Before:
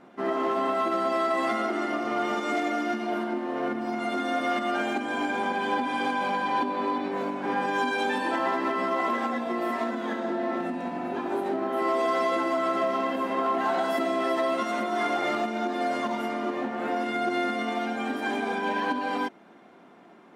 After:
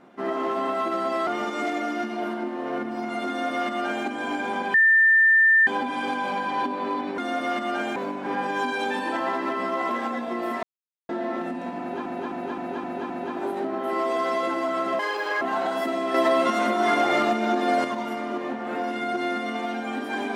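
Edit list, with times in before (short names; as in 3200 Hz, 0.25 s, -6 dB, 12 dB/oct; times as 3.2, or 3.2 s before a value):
1.27–2.17 cut
4.18–4.96 copy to 7.15
5.64 add tone 1790 Hz -13.5 dBFS 0.93 s
9.82–10.28 mute
10.99–11.25 loop, 6 plays
12.88–13.54 speed 156%
14.27–15.97 gain +5.5 dB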